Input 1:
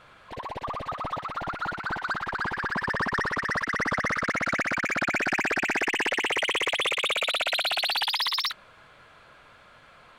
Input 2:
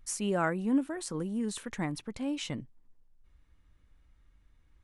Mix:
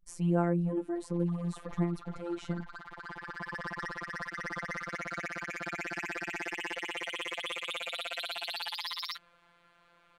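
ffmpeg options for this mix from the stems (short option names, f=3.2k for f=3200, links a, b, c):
-filter_complex "[0:a]adelay=650,volume=-8dB[a];[1:a]agate=range=-22dB:threshold=-52dB:ratio=16:detection=peak,tiltshelf=f=1.1k:g=8.5,volume=-1.5dB,asplit=2[b][c];[c]apad=whole_len=478010[d];[a][d]sidechaincompress=threshold=-31dB:ratio=8:attack=6.8:release=1330[e];[e][b]amix=inputs=2:normalize=0,afftfilt=real='hypot(re,im)*cos(PI*b)':imag='0':win_size=1024:overlap=0.75"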